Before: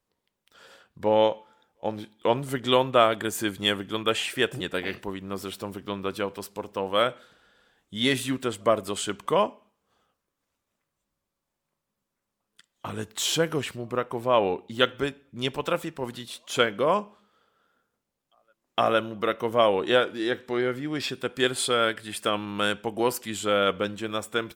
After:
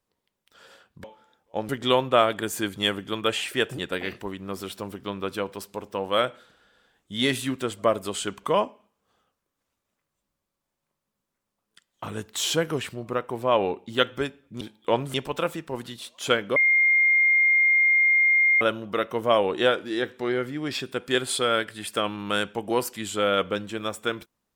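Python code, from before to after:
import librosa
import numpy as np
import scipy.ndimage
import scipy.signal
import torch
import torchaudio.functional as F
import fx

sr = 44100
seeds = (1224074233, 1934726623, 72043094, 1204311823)

y = fx.edit(x, sr, fx.cut(start_s=1.04, length_s=0.29),
    fx.move(start_s=1.98, length_s=0.53, to_s=15.43),
    fx.bleep(start_s=16.85, length_s=2.05, hz=2120.0, db=-16.0), tone=tone)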